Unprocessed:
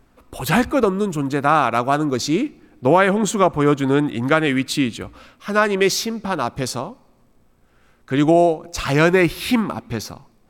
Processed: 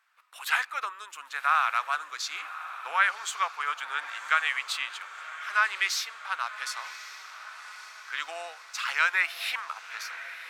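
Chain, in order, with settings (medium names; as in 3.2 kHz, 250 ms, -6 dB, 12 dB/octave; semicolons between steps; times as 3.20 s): high-pass 1.3 kHz 24 dB/octave; treble shelf 3.6 kHz -11.5 dB; echo that smears into a reverb 1094 ms, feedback 58%, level -13.5 dB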